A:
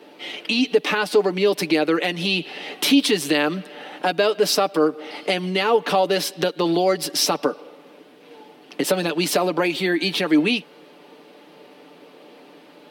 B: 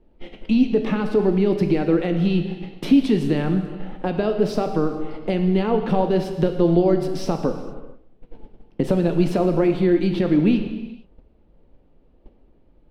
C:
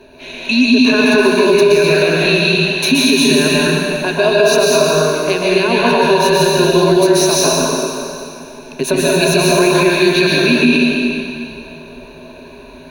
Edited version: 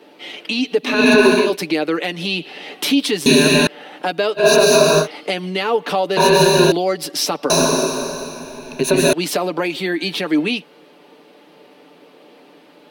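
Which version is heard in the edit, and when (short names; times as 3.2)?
A
0.95–1.45 from C, crossfade 0.24 s
3.26–3.67 from C
4.41–5.03 from C, crossfade 0.10 s
6.17–6.72 from C
7.5–9.13 from C
not used: B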